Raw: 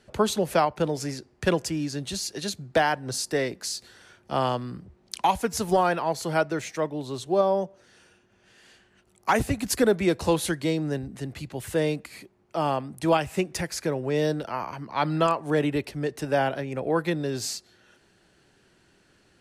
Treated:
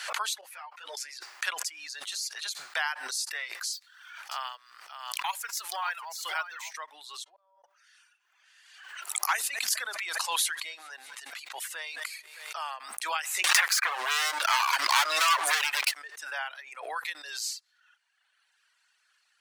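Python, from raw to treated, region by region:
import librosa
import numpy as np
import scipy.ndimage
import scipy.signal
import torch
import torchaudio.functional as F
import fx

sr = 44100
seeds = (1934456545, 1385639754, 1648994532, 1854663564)

y = fx.chain(x, sr, fx.level_steps(step_db=15),
    fx.ensemble(), at=(0.41, 0.97))
y = fx.chain(y, sr, fx.low_shelf(hz=470.0, db=-9.0),
    fx.echo_single(ms=583, db=-9.0),
    fx.resample_linear(factor=2), at=(3.73, 6.71))
y = fx.chain(y, sr, fx.spacing_loss(db_at_10k=23),
    fx.comb_fb(f0_hz=190.0, decay_s=0.22, harmonics='odd', damping=0.0, mix_pct=90),
    fx.gate_flip(shuts_db=-27.0, range_db=-34), at=(7.24, 7.64))
y = fx.chain(y, sr, fx.echo_feedback(ms=204, feedback_pct=55, wet_db=-21),
    fx.sustainer(db_per_s=47.0), at=(9.33, 12.64))
y = fx.chain(y, sr, fx.leveller(passes=5),
    fx.overload_stage(gain_db=15.5),
    fx.band_squash(depth_pct=100), at=(13.44, 15.95))
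y = fx.dereverb_blind(y, sr, rt60_s=1.3)
y = scipy.signal.sosfilt(scipy.signal.butter(4, 1100.0, 'highpass', fs=sr, output='sos'), y)
y = fx.pre_swell(y, sr, db_per_s=53.0)
y = y * librosa.db_to_amplitude(-1.5)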